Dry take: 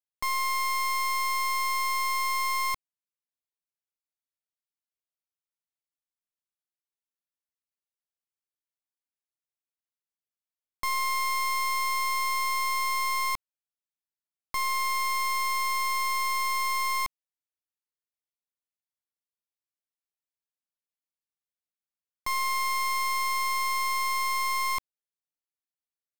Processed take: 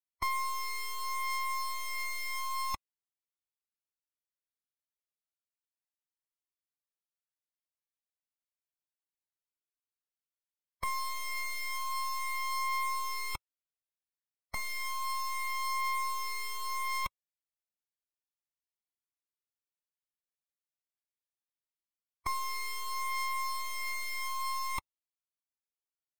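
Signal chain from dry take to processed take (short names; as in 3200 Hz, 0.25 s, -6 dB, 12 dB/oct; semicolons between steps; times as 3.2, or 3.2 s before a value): spectral noise reduction 11 dB; cascading flanger rising 0.32 Hz; gain +7.5 dB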